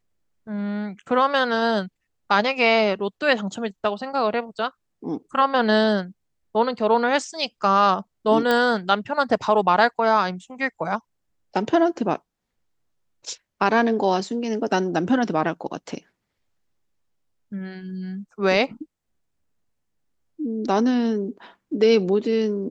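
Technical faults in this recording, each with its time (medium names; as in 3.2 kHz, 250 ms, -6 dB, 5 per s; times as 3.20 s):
8.51 s: pop -9 dBFS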